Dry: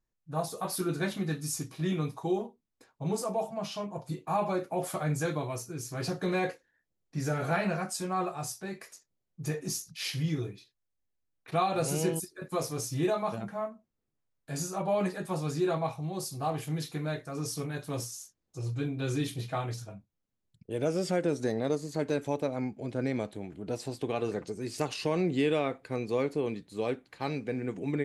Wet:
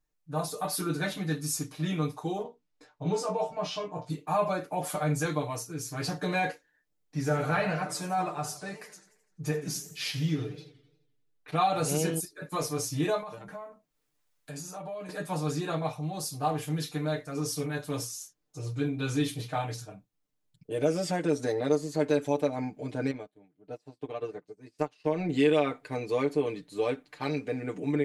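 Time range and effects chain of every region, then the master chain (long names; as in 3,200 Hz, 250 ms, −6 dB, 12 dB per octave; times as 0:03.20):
0:02.43–0:04.10: low-pass filter 6,000 Hz + double-tracking delay 17 ms −3.5 dB
0:07.18–0:11.61: high-shelf EQ 5,200 Hz −5 dB + feedback echo with a swinging delay time 86 ms, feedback 53%, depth 215 cents, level −13.5 dB
0:13.20–0:15.09: downward compressor 12 to 1, threshold −38 dBFS + one half of a high-frequency compander encoder only
0:23.11–0:25.29: high-shelf EQ 4,300 Hz −10 dB + expander for the loud parts 2.5 to 1, over −46 dBFS
whole clip: parametric band 110 Hz −5.5 dB 1.7 octaves; comb filter 6.7 ms, depth 95%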